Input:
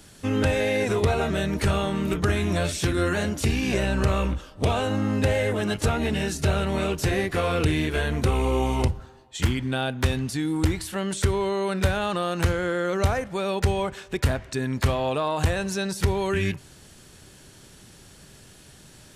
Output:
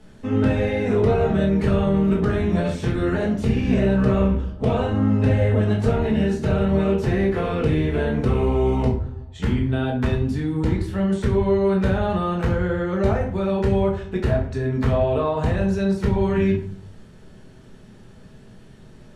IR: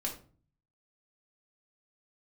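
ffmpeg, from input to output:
-filter_complex "[0:a]lowpass=frequency=1100:poles=1[link_01];[1:a]atrim=start_sample=2205,asetrate=35280,aresample=44100[link_02];[link_01][link_02]afir=irnorm=-1:irlink=0"

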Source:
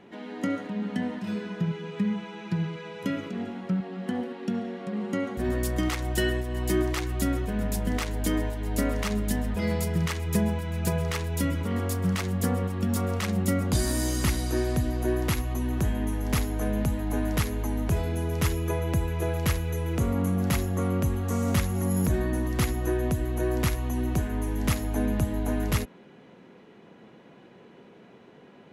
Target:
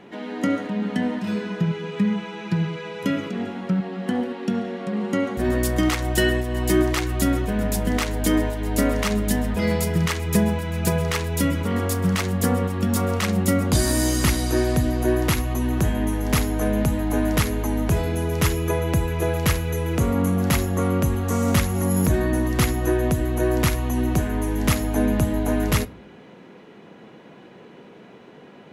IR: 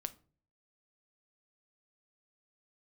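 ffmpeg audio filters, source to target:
-filter_complex "[0:a]asplit=2[link_01][link_02];[1:a]atrim=start_sample=2205,lowshelf=frequency=150:gain=-6.5[link_03];[link_02][link_03]afir=irnorm=-1:irlink=0,volume=3.5dB[link_04];[link_01][link_04]amix=inputs=2:normalize=0"

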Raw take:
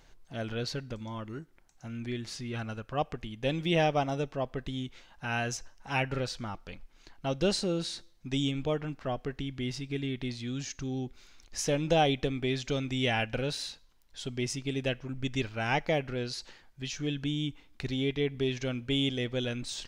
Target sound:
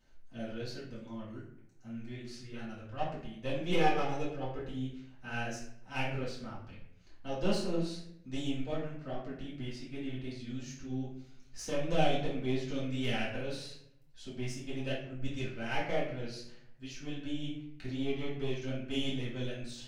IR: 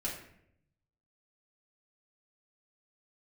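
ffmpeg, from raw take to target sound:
-filter_complex "[0:a]asettb=1/sr,asplit=3[link_01][link_02][link_03];[link_01]atrim=end=3.714[link_04];[link_02]atrim=start=3.71:end=4.65,asetpts=PTS-STARTPTS,afade=type=in:duration=0.004:curve=qsin,afade=type=out:start_time=0.936:duration=0.004:curve=qsin,aecho=1:1:2.4:0.91,atrim=end_sample=41454[link_05];[link_03]atrim=start=4.646[link_06];[link_04][link_05]acrossfade=duration=0.004:curve1=hsin:curve2=qsin[link_07];[link_07][link_06]acrossfade=duration=0.004:curve1=qsin:curve2=hsin,aeval=exprs='0.2*(cos(1*acos(clip(val(0)/0.2,-1,1)))-cos(1*PI/2))+0.0447*(cos(2*acos(clip(val(0)/0.2,-1,1)))-cos(2*PI/2))+0.01*(cos(7*acos(clip(val(0)/0.2,-1,1)))-cos(7*PI/2))':channel_layout=same,flanger=delay=17:depth=6.4:speed=2.6[link_08];[1:a]atrim=start_sample=2205[link_09];[link_08][link_09]afir=irnorm=-1:irlink=0,volume=-4.5dB"

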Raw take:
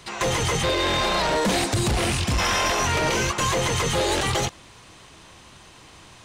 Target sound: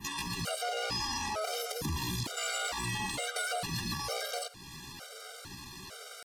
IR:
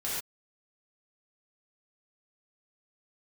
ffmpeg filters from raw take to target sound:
-filter_complex "[0:a]equalizer=frequency=500:width=4.1:gain=2.5,asetrate=60591,aresample=44100,atempo=0.727827,acompressor=threshold=-36dB:ratio=6,adynamicequalizer=threshold=0.00224:dfrequency=5100:dqfactor=1:tfrequency=5100:tqfactor=1:attack=5:release=100:ratio=0.375:range=2:mode=boostabove:tftype=bell,asplit=2[link_01][link_02];[1:a]atrim=start_sample=2205,adelay=76[link_03];[link_02][link_03]afir=irnorm=-1:irlink=0,volume=-26dB[link_04];[link_01][link_04]amix=inputs=2:normalize=0,afftfilt=real='re*gt(sin(2*PI*1.1*pts/sr)*(1-2*mod(floor(b*sr/1024/400),2)),0)':imag='im*gt(sin(2*PI*1.1*pts/sr)*(1-2*mod(floor(b*sr/1024/400),2)),0)':win_size=1024:overlap=0.75,volume=3.5dB"

